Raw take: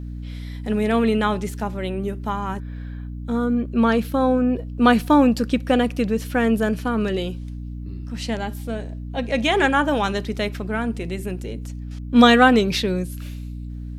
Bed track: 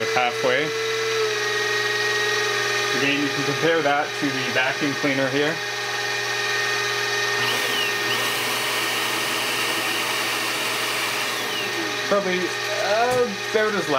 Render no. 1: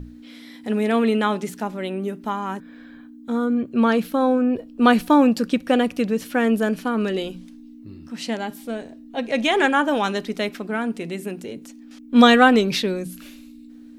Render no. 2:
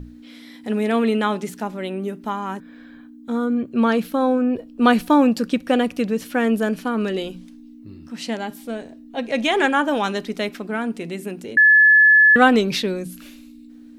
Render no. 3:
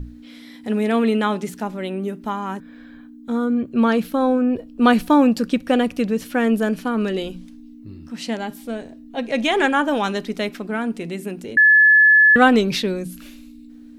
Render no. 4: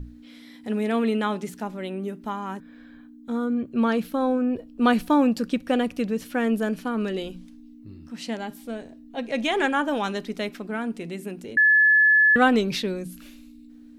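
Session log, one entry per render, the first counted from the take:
mains-hum notches 60/120/180 Hz
0:11.57–0:12.36: beep over 1,720 Hz −8.5 dBFS
low-shelf EQ 97 Hz +8 dB
level −5 dB

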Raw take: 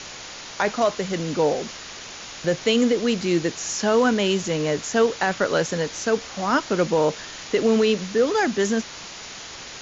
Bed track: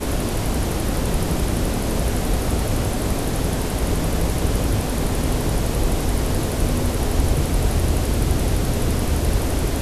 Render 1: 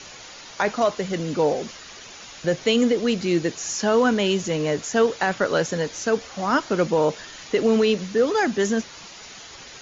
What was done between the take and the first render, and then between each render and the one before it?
broadband denoise 7 dB, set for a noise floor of −38 dBFS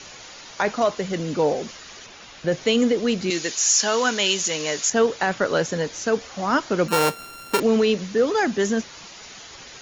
0:02.06–0:02.52: high-frequency loss of the air 84 metres
0:03.30–0:04.90: spectral tilt +4 dB per octave
0:06.88–0:07.60: samples sorted by size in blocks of 32 samples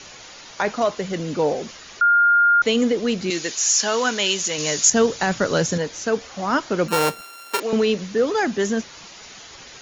0:02.01–0:02.62: beep over 1,410 Hz −12 dBFS
0:04.58–0:05.78: bass and treble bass +8 dB, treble +8 dB
0:07.21–0:07.73: Bessel high-pass filter 600 Hz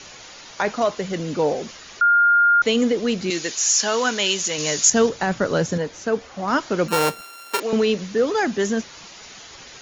0:05.09–0:06.48: high-shelf EQ 2,700 Hz −8 dB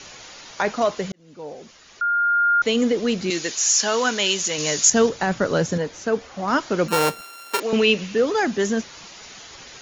0:01.12–0:02.97: fade in
0:07.73–0:08.20: parametric band 2,700 Hz +14.5 dB → +8 dB 0.41 octaves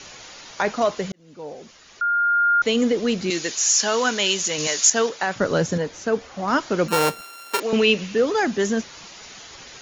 0:04.67–0:05.36: meter weighting curve A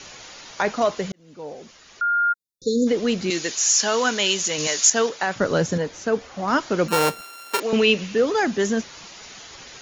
0:02.33–0:02.87: time-frequency box erased 540–3,500 Hz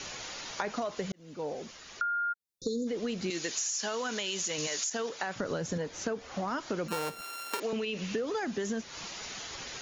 brickwall limiter −14 dBFS, peak gain reduction 10 dB
downward compressor 10 to 1, threshold −30 dBFS, peak gain reduction 12.5 dB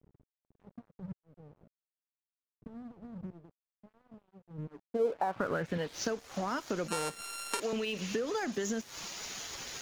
low-pass filter sweep 130 Hz → 9,300 Hz, 0:04.46–0:06.27
dead-zone distortion −49 dBFS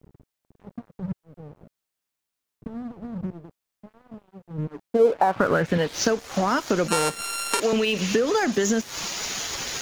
level +12 dB
brickwall limiter −3 dBFS, peak gain reduction 2 dB

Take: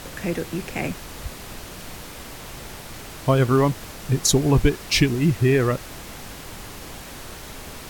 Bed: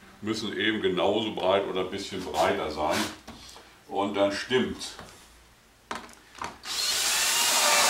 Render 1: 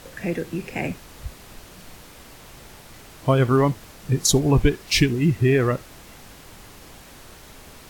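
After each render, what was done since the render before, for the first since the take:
noise reduction from a noise print 7 dB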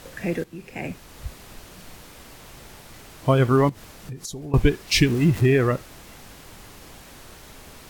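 0:00.44–0:01.26: fade in, from −13.5 dB
0:03.69–0:04.54: downward compressor 5 to 1, threshold −33 dBFS
0:05.06–0:05.46: converter with a step at zero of −30.5 dBFS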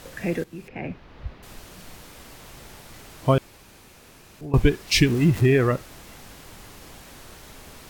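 0:00.68–0:01.43: high-frequency loss of the air 290 metres
0:03.38–0:04.41: fill with room tone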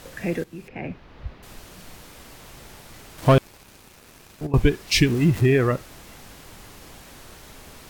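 0:03.18–0:04.47: leveller curve on the samples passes 2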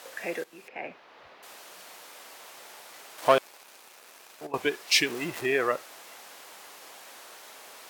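Chebyshev high-pass filter 640 Hz, order 2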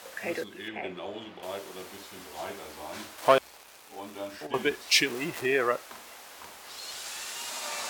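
mix in bed −14 dB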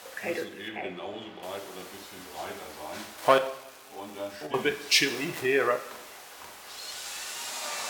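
coupled-rooms reverb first 0.68 s, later 2.1 s, DRR 6.5 dB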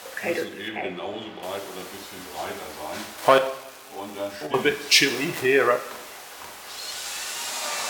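level +5.5 dB
brickwall limiter −3 dBFS, peak gain reduction 2.5 dB

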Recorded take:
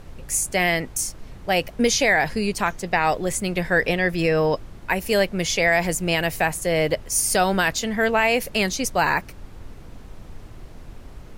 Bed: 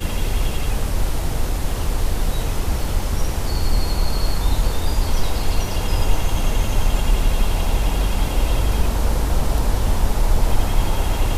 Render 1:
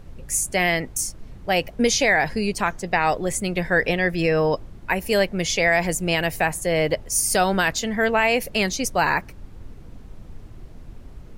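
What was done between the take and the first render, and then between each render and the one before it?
broadband denoise 6 dB, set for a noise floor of −42 dBFS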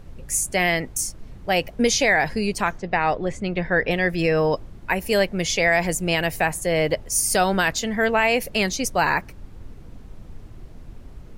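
0:02.78–0:03.91: high-frequency loss of the air 170 metres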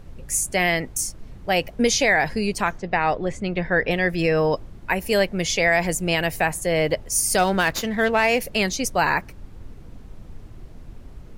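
0:07.38–0:08.41: windowed peak hold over 3 samples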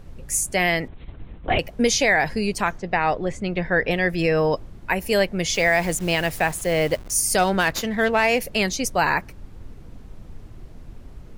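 0:00.88–0:01.59: linear-prediction vocoder at 8 kHz whisper
0:05.54–0:07.14: hold until the input has moved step −35.5 dBFS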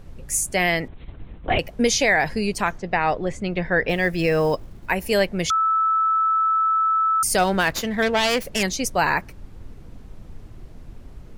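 0:03.89–0:04.91: floating-point word with a short mantissa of 4 bits
0:05.50–0:07.23: beep over 1,310 Hz −16.5 dBFS
0:08.02–0:08.63: phase distortion by the signal itself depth 0.16 ms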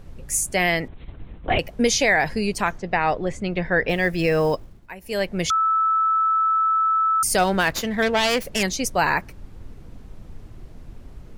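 0:04.50–0:05.39: duck −15 dB, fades 0.39 s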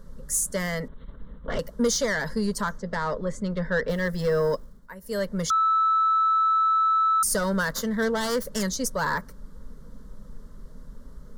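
soft clipping −15 dBFS, distortion −16 dB
phaser with its sweep stopped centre 500 Hz, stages 8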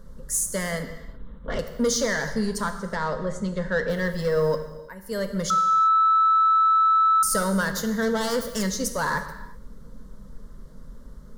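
reverb whose tail is shaped and stops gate 400 ms falling, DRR 7 dB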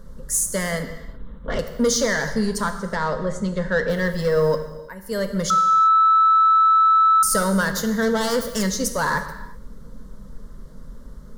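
level +3.5 dB

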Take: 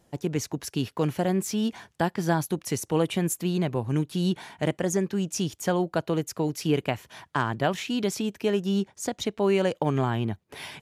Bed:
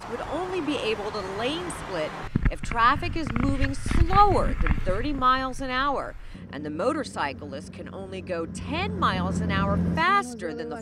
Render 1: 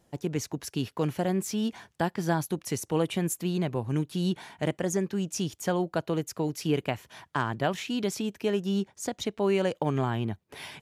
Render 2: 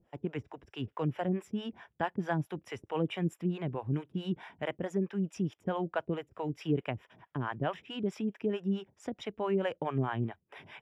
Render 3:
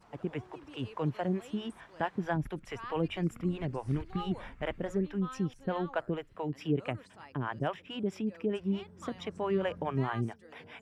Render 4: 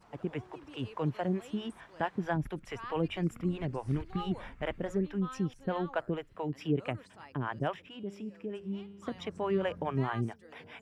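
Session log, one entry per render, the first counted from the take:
level −2.5 dB
two-band tremolo in antiphase 4.6 Hz, depth 100%, crossover 480 Hz; Savitzky-Golay smoothing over 25 samples
mix in bed −24 dB
0:07.89–0:09.07: tuned comb filter 100 Hz, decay 1.3 s

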